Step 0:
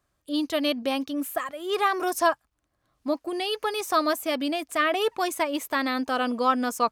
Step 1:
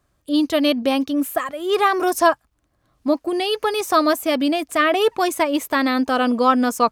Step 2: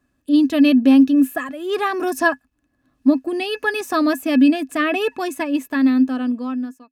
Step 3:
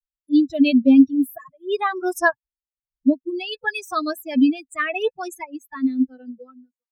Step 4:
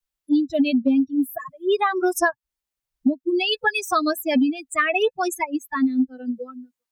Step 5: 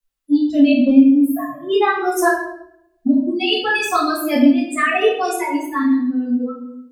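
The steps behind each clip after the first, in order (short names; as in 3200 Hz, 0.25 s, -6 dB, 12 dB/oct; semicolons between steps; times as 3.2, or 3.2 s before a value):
low shelf 490 Hz +5 dB; gain +5 dB
ending faded out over 2.02 s; small resonant body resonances 260/1700/2600 Hz, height 18 dB, ringing for 85 ms; gain -5 dB
per-bin expansion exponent 3; gain +2.5 dB
compressor 10:1, threshold -25 dBFS, peak gain reduction 18 dB; gain +8.5 dB
shoebox room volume 190 m³, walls mixed, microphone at 2.1 m; gain -3 dB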